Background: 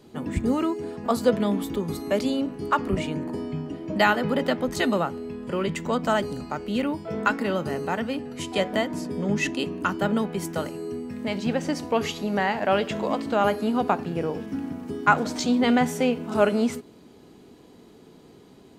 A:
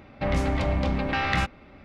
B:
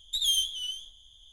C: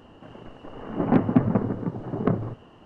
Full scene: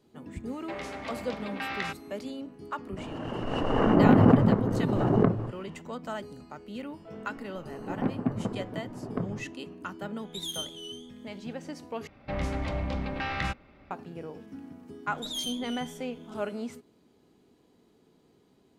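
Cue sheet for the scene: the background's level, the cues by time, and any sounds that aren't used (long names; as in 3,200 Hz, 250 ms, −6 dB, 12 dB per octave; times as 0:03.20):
background −13 dB
0:00.47: mix in A −6.5 dB + high-pass filter 730 Hz 6 dB per octave
0:02.97: mix in C −1.5 dB + background raised ahead of every attack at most 23 dB per second
0:06.90: mix in C −9.5 dB
0:10.21: mix in B −8 dB + notch comb filter 290 Hz
0:12.07: overwrite with A −6.5 dB
0:15.09: mix in B −9 dB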